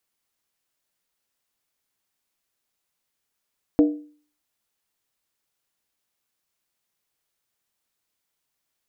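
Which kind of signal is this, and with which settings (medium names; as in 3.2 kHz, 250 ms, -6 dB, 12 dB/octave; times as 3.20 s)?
skin hit, lowest mode 298 Hz, decay 0.45 s, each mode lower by 8.5 dB, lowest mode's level -10 dB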